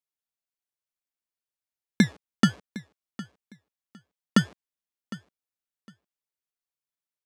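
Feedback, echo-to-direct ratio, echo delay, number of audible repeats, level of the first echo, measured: 20%, -17.5 dB, 758 ms, 2, -17.5 dB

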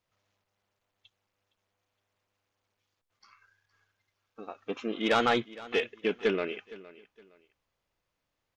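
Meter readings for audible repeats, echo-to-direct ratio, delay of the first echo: 2, -18.5 dB, 464 ms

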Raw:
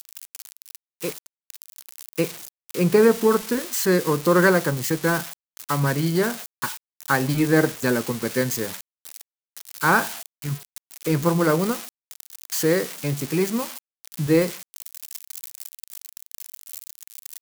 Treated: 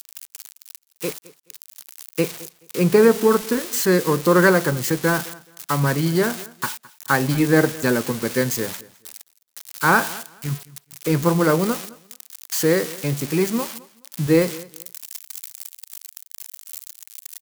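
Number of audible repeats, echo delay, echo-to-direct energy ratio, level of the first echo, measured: 2, 213 ms, -21.0 dB, -21.0 dB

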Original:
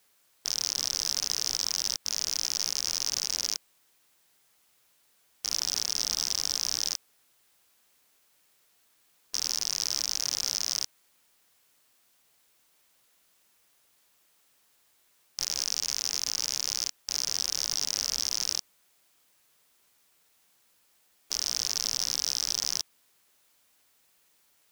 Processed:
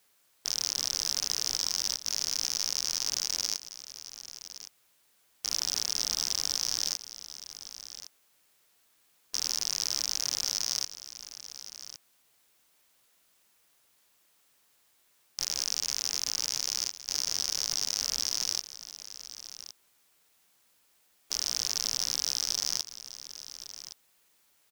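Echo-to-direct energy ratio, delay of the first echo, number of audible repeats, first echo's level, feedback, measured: -13.5 dB, 1114 ms, 1, -13.5 dB, no regular repeats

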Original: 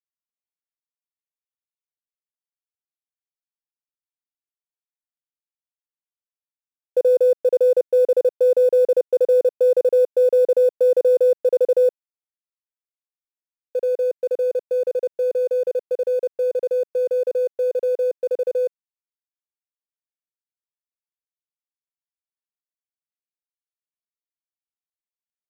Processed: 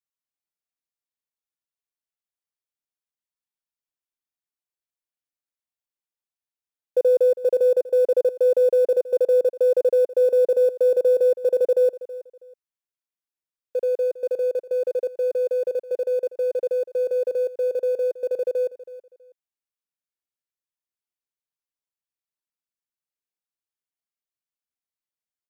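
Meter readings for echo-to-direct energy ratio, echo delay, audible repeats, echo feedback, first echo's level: -16.5 dB, 324 ms, 2, 23%, -16.5 dB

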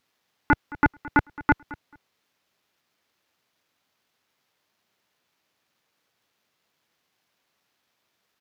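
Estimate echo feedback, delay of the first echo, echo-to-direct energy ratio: 18%, 218 ms, -19.0 dB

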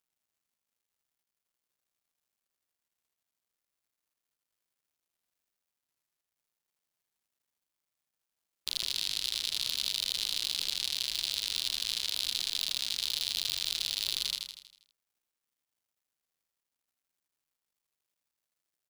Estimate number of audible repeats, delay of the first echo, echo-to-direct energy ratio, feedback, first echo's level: 6, 80 ms, -3.5 dB, 53%, -5.0 dB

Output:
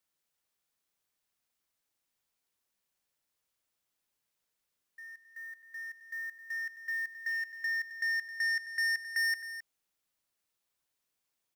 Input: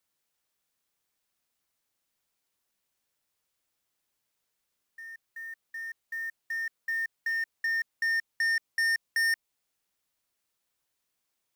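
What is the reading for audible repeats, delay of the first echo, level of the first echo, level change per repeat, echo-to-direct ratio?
2, 85 ms, -15.5 dB, no regular repeats, -10.5 dB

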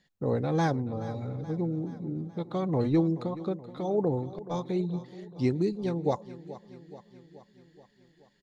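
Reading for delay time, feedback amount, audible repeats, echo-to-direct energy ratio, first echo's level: 427 ms, 59%, 5, -14.0 dB, -16.0 dB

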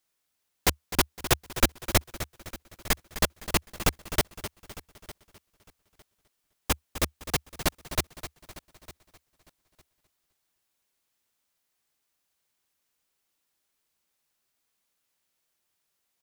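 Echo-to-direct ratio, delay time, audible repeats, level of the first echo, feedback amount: -11.5 dB, 256 ms, 6, -13.0 dB, no regular repeats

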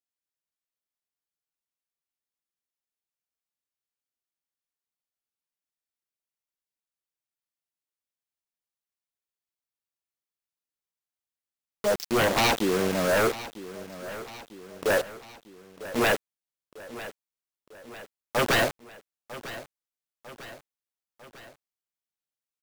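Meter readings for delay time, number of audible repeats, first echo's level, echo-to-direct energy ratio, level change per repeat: 949 ms, 3, -15.5 dB, -14.0 dB, -5.0 dB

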